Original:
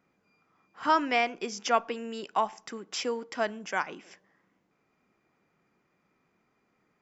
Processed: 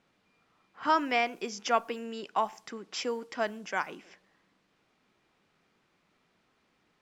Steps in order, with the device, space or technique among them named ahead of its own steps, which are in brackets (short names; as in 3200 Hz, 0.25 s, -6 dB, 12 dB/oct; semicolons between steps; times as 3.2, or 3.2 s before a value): cassette deck with a dynamic noise filter (white noise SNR 32 dB; low-pass opened by the level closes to 3000 Hz, open at -27.5 dBFS); gain -1.5 dB